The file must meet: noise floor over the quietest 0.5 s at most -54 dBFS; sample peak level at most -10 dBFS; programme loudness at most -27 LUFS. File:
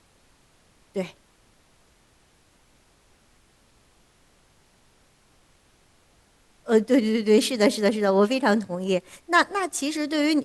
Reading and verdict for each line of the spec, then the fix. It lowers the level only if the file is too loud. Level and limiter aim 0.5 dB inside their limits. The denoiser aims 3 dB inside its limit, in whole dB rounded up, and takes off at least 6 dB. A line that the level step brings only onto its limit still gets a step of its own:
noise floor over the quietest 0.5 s -60 dBFS: pass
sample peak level -6.0 dBFS: fail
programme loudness -22.5 LUFS: fail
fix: trim -5 dB

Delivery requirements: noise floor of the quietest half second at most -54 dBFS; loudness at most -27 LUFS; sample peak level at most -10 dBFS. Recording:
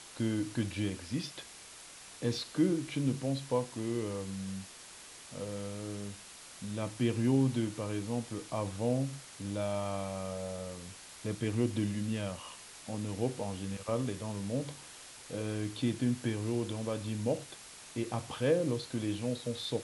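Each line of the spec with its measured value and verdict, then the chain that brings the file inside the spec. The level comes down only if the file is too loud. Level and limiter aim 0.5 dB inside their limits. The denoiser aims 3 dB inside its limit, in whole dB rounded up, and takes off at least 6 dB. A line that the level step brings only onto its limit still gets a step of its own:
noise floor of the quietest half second -51 dBFS: fail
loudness -35.0 LUFS: pass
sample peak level -17.0 dBFS: pass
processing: noise reduction 6 dB, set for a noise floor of -51 dBFS

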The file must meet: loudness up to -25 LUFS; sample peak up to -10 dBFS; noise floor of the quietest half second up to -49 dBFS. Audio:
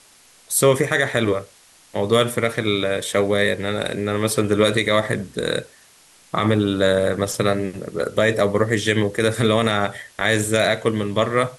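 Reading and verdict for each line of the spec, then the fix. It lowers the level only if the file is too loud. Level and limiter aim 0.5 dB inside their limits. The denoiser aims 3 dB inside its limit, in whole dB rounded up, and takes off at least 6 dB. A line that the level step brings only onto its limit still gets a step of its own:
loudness -20.0 LUFS: fail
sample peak -5.5 dBFS: fail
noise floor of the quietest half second -52 dBFS: pass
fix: trim -5.5 dB

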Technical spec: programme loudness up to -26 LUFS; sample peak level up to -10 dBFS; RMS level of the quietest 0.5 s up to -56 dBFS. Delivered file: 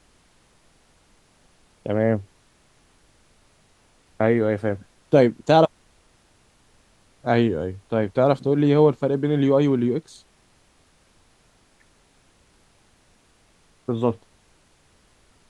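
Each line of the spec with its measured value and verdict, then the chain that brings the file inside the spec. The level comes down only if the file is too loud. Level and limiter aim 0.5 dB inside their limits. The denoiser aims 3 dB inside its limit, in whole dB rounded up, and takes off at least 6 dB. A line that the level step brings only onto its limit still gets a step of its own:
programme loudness -21.5 LUFS: fail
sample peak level -4.0 dBFS: fail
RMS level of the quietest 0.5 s -59 dBFS: pass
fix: trim -5 dB; peak limiter -10.5 dBFS

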